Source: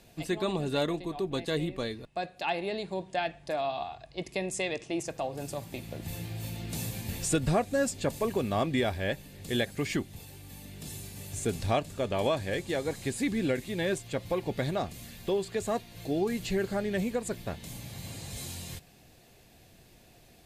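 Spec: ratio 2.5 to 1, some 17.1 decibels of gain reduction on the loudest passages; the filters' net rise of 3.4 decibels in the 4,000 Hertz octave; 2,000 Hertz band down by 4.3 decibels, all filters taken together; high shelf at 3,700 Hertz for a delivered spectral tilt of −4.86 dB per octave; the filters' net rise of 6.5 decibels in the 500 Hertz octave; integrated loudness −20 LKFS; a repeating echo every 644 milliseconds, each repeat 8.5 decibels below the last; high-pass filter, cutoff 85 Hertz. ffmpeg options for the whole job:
ffmpeg -i in.wav -af "highpass=85,equalizer=frequency=500:width_type=o:gain=8.5,equalizer=frequency=2000:width_type=o:gain=-7.5,highshelf=frequency=3700:gain=-3,equalizer=frequency=4000:width_type=o:gain=8,acompressor=threshold=-45dB:ratio=2.5,aecho=1:1:644|1288|1932|2576:0.376|0.143|0.0543|0.0206,volume=22dB" out.wav

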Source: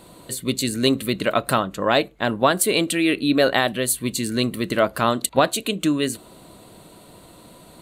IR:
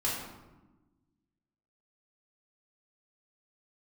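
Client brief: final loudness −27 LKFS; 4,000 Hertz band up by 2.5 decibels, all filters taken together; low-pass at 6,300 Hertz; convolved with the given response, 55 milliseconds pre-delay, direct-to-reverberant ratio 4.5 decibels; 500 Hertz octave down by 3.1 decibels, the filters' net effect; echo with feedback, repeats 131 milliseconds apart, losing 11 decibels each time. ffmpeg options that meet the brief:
-filter_complex "[0:a]lowpass=6300,equalizer=frequency=500:width_type=o:gain=-4,equalizer=frequency=4000:width_type=o:gain=3.5,aecho=1:1:131|262|393:0.282|0.0789|0.0221,asplit=2[link_01][link_02];[1:a]atrim=start_sample=2205,adelay=55[link_03];[link_02][link_03]afir=irnorm=-1:irlink=0,volume=-11.5dB[link_04];[link_01][link_04]amix=inputs=2:normalize=0,volume=-7dB"

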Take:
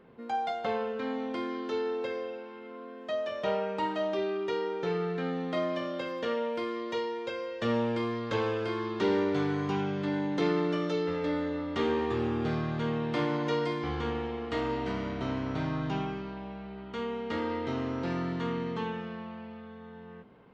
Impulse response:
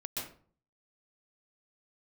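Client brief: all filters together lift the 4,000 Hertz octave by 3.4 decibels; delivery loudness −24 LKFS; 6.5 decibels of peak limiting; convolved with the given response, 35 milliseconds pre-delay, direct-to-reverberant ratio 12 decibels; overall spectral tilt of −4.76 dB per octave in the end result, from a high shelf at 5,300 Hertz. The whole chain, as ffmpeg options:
-filter_complex "[0:a]equalizer=frequency=4000:width_type=o:gain=6,highshelf=frequency=5300:gain=-4,alimiter=limit=-22.5dB:level=0:latency=1,asplit=2[link_01][link_02];[1:a]atrim=start_sample=2205,adelay=35[link_03];[link_02][link_03]afir=irnorm=-1:irlink=0,volume=-13.5dB[link_04];[link_01][link_04]amix=inputs=2:normalize=0,volume=8.5dB"

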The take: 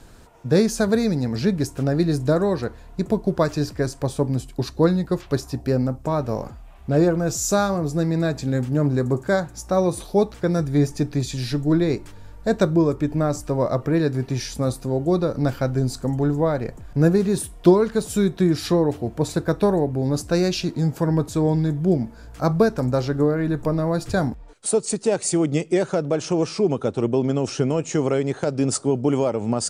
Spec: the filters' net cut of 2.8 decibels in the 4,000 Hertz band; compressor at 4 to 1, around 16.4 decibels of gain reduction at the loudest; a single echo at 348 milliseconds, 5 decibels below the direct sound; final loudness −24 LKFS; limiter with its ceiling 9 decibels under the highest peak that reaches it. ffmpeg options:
ffmpeg -i in.wav -af "equalizer=frequency=4000:width_type=o:gain=-3.5,acompressor=threshold=-29dB:ratio=4,alimiter=level_in=1.5dB:limit=-24dB:level=0:latency=1,volume=-1.5dB,aecho=1:1:348:0.562,volume=10dB" out.wav

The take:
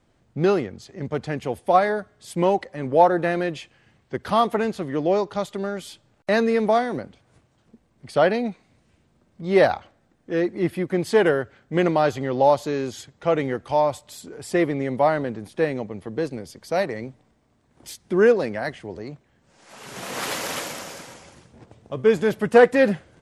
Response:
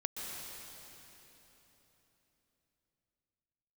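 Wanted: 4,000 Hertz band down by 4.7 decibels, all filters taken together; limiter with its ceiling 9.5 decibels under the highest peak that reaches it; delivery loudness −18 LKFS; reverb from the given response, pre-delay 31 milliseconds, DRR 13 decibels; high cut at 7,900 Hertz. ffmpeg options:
-filter_complex "[0:a]lowpass=7900,equalizer=frequency=4000:width_type=o:gain=-6,alimiter=limit=-13dB:level=0:latency=1,asplit=2[link_01][link_02];[1:a]atrim=start_sample=2205,adelay=31[link_03];[link_02][link_03]afir=irnorm=-1:irlink=0,volume=-15dB[link_04];[link_01][link_04]amix=inputs=2:normalize=0,volume=7.5dB"

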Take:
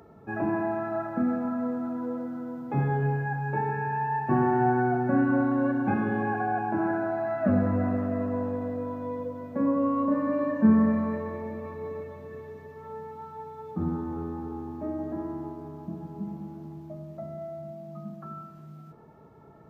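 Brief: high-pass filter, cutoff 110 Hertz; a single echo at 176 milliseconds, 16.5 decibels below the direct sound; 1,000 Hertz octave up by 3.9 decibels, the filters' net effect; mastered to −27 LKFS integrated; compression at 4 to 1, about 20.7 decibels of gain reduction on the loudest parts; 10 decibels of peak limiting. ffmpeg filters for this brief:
ffmpeg -i in.wav -af "highpass=110,equalizer=frequency=1000:width_type=o:gain=5,acompressor=threshold=-41dB:ratio=4,alimiter=level_in=14dB:limit=-24dB:level=0:latency=1,volume=-14dB,aecho=1:1:176:0.15,volume=18.5dB" out.wav

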